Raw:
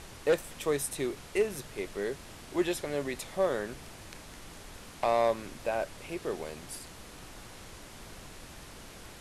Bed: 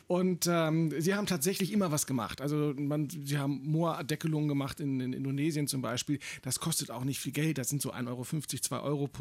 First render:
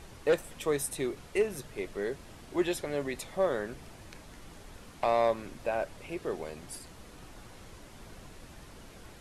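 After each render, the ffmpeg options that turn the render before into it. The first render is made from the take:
-af "afftdn=nr=6:nf=-49"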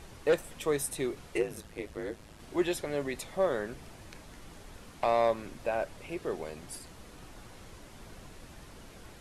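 -filter_complex "[0:a]asettb=1/sr,asplit=3[a][b][c];[a]atrim=end=1.374[d];[b]atrim=start=1.37:end=2.4,asetpts=PTS-STARTPTS,afade=t=in:d=0.004:c=qsin,afade=t=out:st=1.026:d=0.004:c=qsin,aeval=exprs='val(0)*sin(2*PI*53*n/s)':c=same[e];[c]atrim=start=2.396[f];[d][e]acrossfade=d=0.004:c1=hsin:c2=qsin[g];[g][f]acrossfade=d=0.004:c1=qsin:c2=hsin"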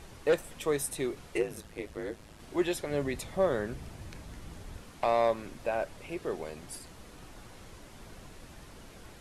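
-filter_complex "[0:a]asettb=1/sr,asplit=3[a][b][c];[a]atrim=end=2.914[d];[b]atrim=start=2.91:end=4.81,asetpts=PTS-STARTPTS,afade=t=in:d=0.004:c=qsin,afade=t=out:st=1.896:d=0.004:c=qsin,equalizer=f=74:t=o:w=2.9:g=8.5[e];[c]atrim=start=4.806[f];[d][e]acrossfade=d=0.004:c1=hsin:c2=qsin[g];[g][f]acrossfade=d=0.004:c1=qsin:c2=hsin"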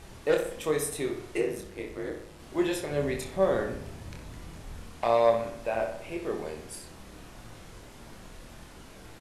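-filter_complex "[0:a]asplit=2[a][b];[b]adelay=26,volume=-4.5dB[c];[a][c]amix=inputs=2:normalize=0,asplit=2[d][e];[e]adelay=62,lowpass=f=3.9k:p=1,volume=-7dB,asplit=2[f][g];[g]adelay=62,lowpass=f=3.9k:p=1,volume=0.54,asplit=2[h][i];[i]adelay=62,lowpass=f=3.9k:p=1,volume=0.54,asplit=2[j][k];[k]adelay=62,lowpass=f=3.9k:p=1,volume=0.54,asplit=2[l][m];[m]adelay=62,lowpass=f=3.9k:p=1,volume=0.54,asplit=2[n][o];[o]adelay=62,lowpass=f=3.9k:p=1,volume=0.54,asplit=2[p][q];[q]adelay=62,lowpass=f=3.9k:p=1,volume=0.54[r];[f][h][j][l][n][p][r]amix=inputs=7:normalize=0[s];[d][s]amix=inputs=2:normalize=0"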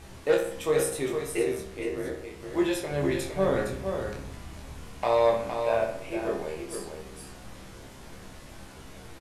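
-filter_complex "[0:a]asplit=2[a][b];[b]adelay=15,volume=-5.5dB[c];[a][c]amix=inputs=2:normalize=0,aecho=1:1:462:0.473"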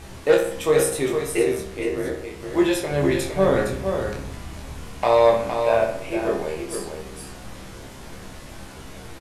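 -af "volume=6.5dB"

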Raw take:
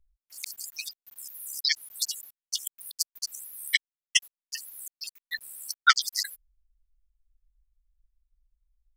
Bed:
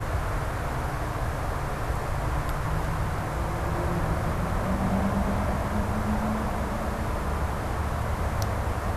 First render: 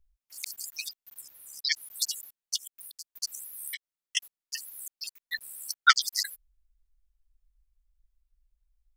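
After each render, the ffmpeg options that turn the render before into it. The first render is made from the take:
-filter_complex "[0:a]asettb=1/sr,asplit=3[a][b][c];[a]atrim=end=1.214[d];[b]atrim=start=1.21:end=1.72,asetpts=PTS-STARTPTS,afade=t=in:d=0.004:c=qsin,afade=t=out:st=0.506:d=0.004:c=qsin,lowpass=f=3.6k:p=1[e];[c]atrim=start=1.716[f];[d][e]acrossfade=d=0.004:c1=hsin:c2=qsin[g];[g][f]acrossfade=d=0.004:c1=qsin:c2=hsin,asplit=3[h][i][j];[h]afade=t=out:st=2.56:d=0.02[k];[i]acompressor=threshold=-40dB:ratio=6:attack=3.2:release=140:knee=1:detection=peak,afade=t=in:st=2.56:d=0.02,afade=t=out:st=3.03:d=0.02[l];[j]afade=t=in:st=3.03:d=0.02[m];[k][l][m]amix=inputs=3:normalize=0,asettb=1/sr,asplit=3[n][o][p];[n]atrim=end=3.714[q];[o]atrim=start=3.71:end=4.17,asetpts=PTS-STARTPTS,afade=t=in:d=0.004:c=qsin,afade=t=out:st=0.456:d=0.004:c=qsin,acompressor=threshold=-33dB:ratio=12:attack=3.2:release=140:knee=1:detection=peak[r];[p]atrim=start=4.166[s];[q][r]acrossfade=d=0.004:c1=hsin:c2=qsin[t];[t][s]acrossfade=d=0.004:c1=qsin:c2=hsin"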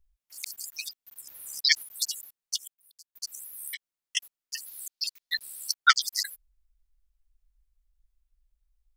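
-filter_complex "[0:a]asettb=1/sr,asplit=3[a][b][c];[a]atrim=end=1.274[d];[b]atrim=start=1.27:end=1.83,asetpts=PTS-STARTPTS,afade=t=in:d=0.004:c=qsin,afade=t=out:st=0.556:d=0.004:c=qsin,acontrast=64[e];[c]atrim=start=1.826[f];[d][e]acrossfade=d=0.004:c1=hsin:c2=qsin[g];[g][f]acrossfade=d=0.004:c1=qsin:c2=hsin,asettb=1/sr,asplit=3[h][i][j];[h]atrim=end=4.664[k];[i]atrim=start=4.66:end=5.74,asetpts=PTS-STARTPTS,afade=t=in:d=0.004:c=qsin,afade=t=out:st=1.076:d=0.004:c=qsin,equalizer=f=4.4k:t=o:w=1.1:g=9[l];[j]atrim=start=5.736[m];[k][l]acrossfade=d=0.004:c1=hsin:c2=qsin[n];[n][m]acrossfade=d=0.004:c1=qsin:c2=hsin,asplit=2[o][p];[o]atrim=end=2.74,asetpts=PTS-STARTPTS,afade=t=out:st=2.736:d=0.004:c=hsin[q];[p]atrim=start=2.74,asetpts=PTS-STARTPTS,afade=t=in:d=0.72[r];[q][r]concat=n=2:v=0:a=1"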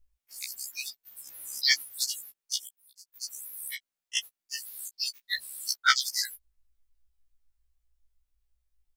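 -filter_complex "[0:a]asplit=2[a][b];[b]asoftclip=type=tanh:threshold=-20dB,volume=-8dB[c];[a][c]amix=inputs=2:normalize=0,afftfilt=real='re*1.73*eq(mod(b,3),0)':imag='im*1.73*eq(mod(b,3),0)':win_size=2048:overlap=0.75"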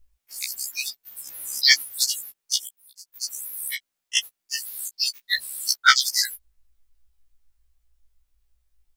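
-af "volume=7.5dB,alimiter=limit=-1dB:level=0:latency=1"

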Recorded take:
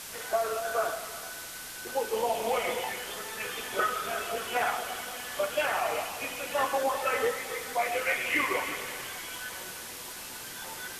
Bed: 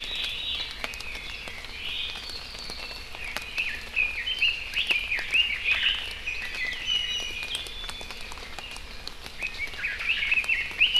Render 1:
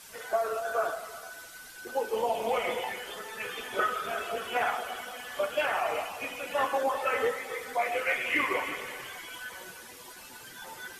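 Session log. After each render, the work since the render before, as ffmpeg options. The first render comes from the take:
-af "afftdn=nr=10:nf=-42"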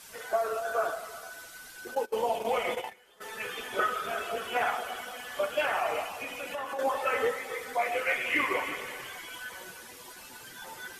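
-filter_complex "[0:a]asplit=3[a][b][c];[a]afade=t=out:st=1.94:d=0.02[d];[b]agate=range=-20dB:threshold=-34dB:ratio=16:release=100:detection=peak,afade=t=in:st=1.94:d=0.02,afade=t=out:st=3.2:d=0.02[e];[c]afade=t=in:st=3.2:d=0.02[f];[d][e][f]amix=inputs=3:normalize=0,asettb=1/sr,asplit=3[g][h][i];[g]atrim=end=6.194[j];[h]atrim=start=6.19:end=6.79,asetpts=PTS-STARTPTS,afade=t=in:d=0.004:c=qsin,afade=t=out:st=0.596:d=0.004:c=qsin,acompressor=threshold=-32dB:ratio=6:attack=3.2:release=140:knee=1:detection=peak[k];[i]atrim=start=6.786[l];[j][k]acrossfade=d=0.004:c1=hsin:c2=qsin[m];[m][l]acrossfade=d=0.004:c1=qsin:c2=hsin"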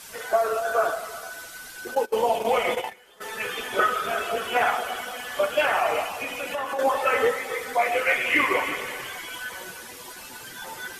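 -af "volume=6.5dB"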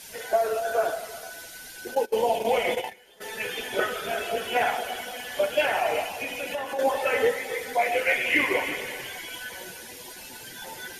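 -af "equalizer=f=1.2k:t=o:w=0.4:g=-14,bandreject=f=7.8k:w=12"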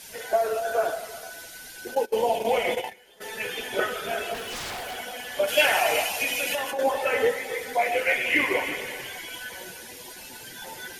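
-filter_complex "[0:a]asplit=3[a][b][c];[a]afade=t=out:st=4.33:d=0.02[d];[b]aeval=exprs='0.0355*(abs(mod(val(0)/0.0355+3,4)-2)-1)':c=same,afade=t=in:st=4.33:d=0.02,afade=t=out:st=4.96:d=0.02[e];[c]afade=t=in:st=4.96:d=0.02[f];[d][e][f]amix=inputs=3:normalize=0,asplit=3[g][h][i];[g]afade=t=out:st=5.47:d=0.02[j];[h]highshelf=f=2.1k:g=11.5,afade=t=in:st=5.47:d=0.02,afade=t=out:st=6.7:d=0.02[k];[i]afade=t=in:st=6.7:d=0.02[l];[j][k][l]amix=inputs=3:normalize=0"

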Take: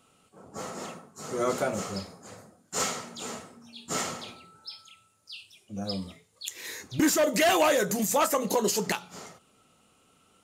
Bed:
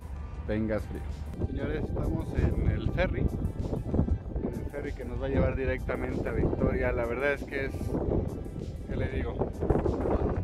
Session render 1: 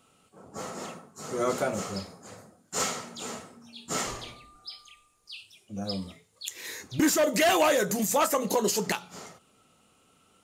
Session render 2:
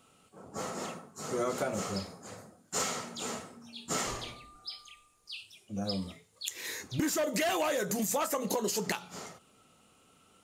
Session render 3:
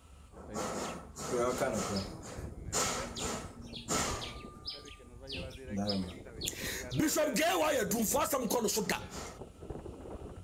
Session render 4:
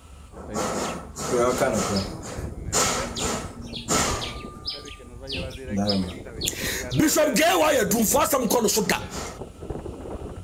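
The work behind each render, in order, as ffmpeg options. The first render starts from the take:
-filter_complex "[0:a]asettb=1/sr,asplit=3[a][b][c];[a]atrim=end=4.064[d];[b]atrim=start=4.06:end=5.37,asetpts=PTS-STARTPTS,afade=t=in:d=0.004:c=qsin,afade=t=out:st=1.306:d=0.004:c=qsin,afreqshift=-120[e];[c]atrim=start=5.366[f];[d][e]acrossfade=d=0.004:c1=hsin:c2=qsin[g];[g][f]acrossfade=d=0.004:c1=qsin:c2=hsin"
-af "acompressor=threshold=-28dB:ratio=6"
-filter_complex "[1:a]volume=-17.5dB[a];[0:a][a]amix=inputs=2:normalize=0"
-af "volume=10.5dB"

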